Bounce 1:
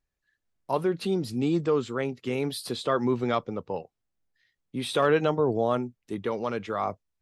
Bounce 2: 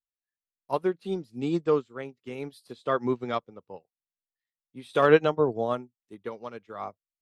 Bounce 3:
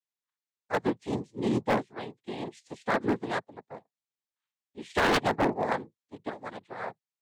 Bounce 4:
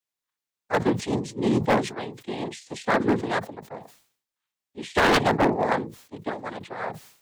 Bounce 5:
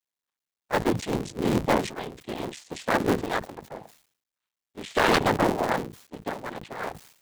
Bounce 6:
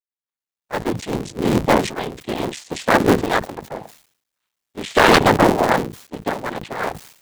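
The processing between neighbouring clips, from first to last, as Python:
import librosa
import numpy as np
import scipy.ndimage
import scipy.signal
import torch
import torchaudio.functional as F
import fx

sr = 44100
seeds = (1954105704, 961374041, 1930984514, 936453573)

y1 = fx.low_shelf(x, sr, hz=140.0, db=-3.0)
y1 = fx.upward_expand(y1, sr, threshold_db=-39.0, expansion=2.5)
y1 = y1 * librosa.db_to_amplitude(6.5)
y2 = fx.noise_vocoder(y1, sr, seeds[0], bands=6)
y2 = 10.0 ** (-18.0 / 20.0) * (np.abs((y2 / 10.0 ** (-18.0 / 20.0) + 3.0) % 4.0 - 2.0) - 1.0)
y3 = fx.sustainer(y2, sr, db_per_s=110.0)
y3 = y3 * librosa.db_to_amplitude(5.0)
y4 = fx.cycle_switch(y3, sr, every=3, mode='muted')
y5 = fx.fade_in_head(y4, sr, length_s=2.08)
y5 = y5 * librosa.db_to_amplitude(9.0)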